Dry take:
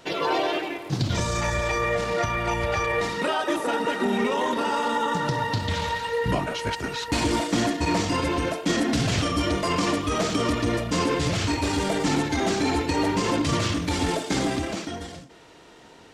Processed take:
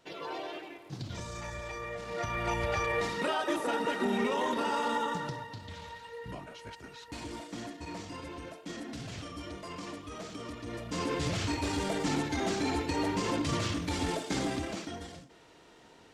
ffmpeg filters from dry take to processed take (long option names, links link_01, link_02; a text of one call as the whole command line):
ffmpeg -i in.wav -af "volume=4.5dB,afade=type=in:start_time=2.03:duration=0.44:silence=0.354813,afade=type=out:start_time=4.95:duration=0.52:silence=0.251189,afade=type=in:start_time=10.63:duration=0.6:silence=0.298538" out.wav